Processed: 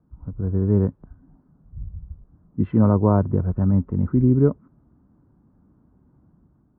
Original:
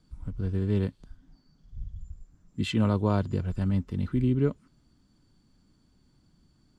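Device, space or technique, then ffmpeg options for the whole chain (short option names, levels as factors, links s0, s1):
action camera in a waterproof case: -af "highpass=51,lowpass=f=1200:w=0.5412,lowpass=f=1200:w=1.3066,dynaudnorm=f=190:g=5:m=1.78,volume=1.41" -ar 48000 -c:a aac -b:a 128k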